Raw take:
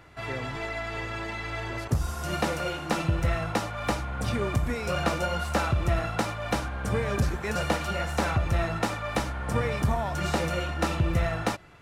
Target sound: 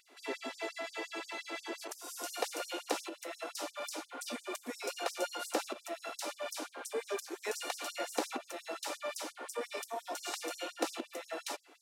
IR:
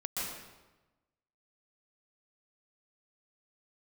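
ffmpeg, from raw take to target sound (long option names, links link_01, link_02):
-af "equalizer=frequency=1500:width_type=o:width=2:gain=-9.5,acompressor=threshold=-27dB:ratio=6,afftfilt=real='re*gte(b*sr/1024,220*pow(5000/220,0.5+0.5*sin(2*PI*5.7*pts/sr)))':imag='im*gte(b*sr/1024,220*pow(5000/220,0.5+0.5*sin(2*PI*5.7*pts/sr)))':win_size=1024:overlap=0.75,volume=1.5dB"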